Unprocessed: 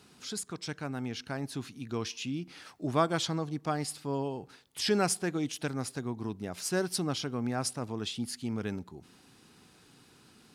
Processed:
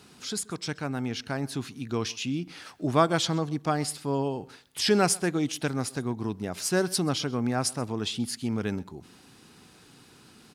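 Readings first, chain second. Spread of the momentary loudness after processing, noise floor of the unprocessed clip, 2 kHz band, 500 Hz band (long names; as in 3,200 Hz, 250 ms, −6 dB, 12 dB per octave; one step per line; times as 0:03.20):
10 LU, −60 dBFS, +5.0 dB, +5.0 dB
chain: single-tap delay 130 ms −23.5 dB
level +5 dB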